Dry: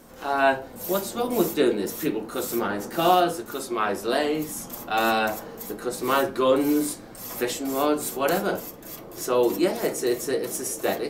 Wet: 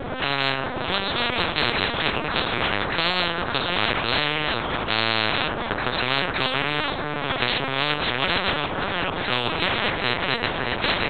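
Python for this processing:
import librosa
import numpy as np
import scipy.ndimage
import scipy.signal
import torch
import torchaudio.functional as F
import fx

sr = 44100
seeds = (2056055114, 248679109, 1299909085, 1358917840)

y = fx.reverse_delay(x, sr, ms=433, wet_db=-13.0)
y = fx.peak_eq(y, sr, hz=560.0, db=5.0, octaves=0.56)
y = fx.lpc_vocoder(y, sr, seeds[0], excitation='pitch_kept', order=8)
y = fx.spectral_comp(y, sr, ratio=10.0)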